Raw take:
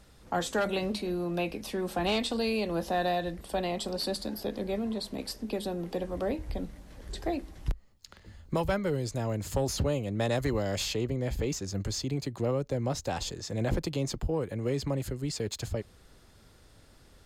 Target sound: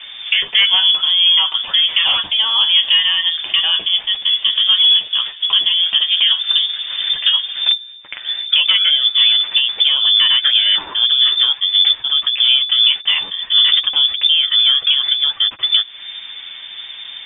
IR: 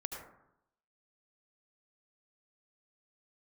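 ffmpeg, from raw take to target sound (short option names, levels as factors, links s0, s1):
-filter_complex "[0:a]highshelf=f=2300:g=12,bandreject=f=66.68:t=h:w=4,bandreject=f=133.36:t=h:w=4,bandreject=f=200.04:t=h:w=4,asplit=2[s0][s1];[s1]aeval=exprs='sgn(val(0))*max(abs(val(0))-0.00473,0)':c=same,volume=0.501[s2];[s0][s2]amix=inputs=2:normalize=0,acompressor=threshold=0.0158:ratio=5,acrusher=bits=5:mode=log:mix=0:aa=0.000001,flanger=delay=7.7:depth=2.9:regen=23:speed=0.64:shape=triangular,apsyclip=47.3,lowpass=f=3100:t=q:w=0.5098,lowpass=f=3100:t=q:w=0.6013,lowpass=f=3100:t=q:w=0.9,lowpass=f=3100:t=q:w=2.563,afreqshift=-3600,tiltshelf=f=1400:g=-10,volume=0.266"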